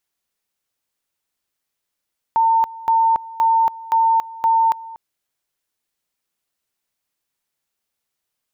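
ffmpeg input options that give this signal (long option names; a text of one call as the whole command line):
ffmpeg -f lavfi -i "aevalsrc='pow(10,(-12-19.5*gte(mod(t,0.52),0.28))/20)*sin(2*PI*905*t)':duration=2.6:sample_rate=44100" out.wav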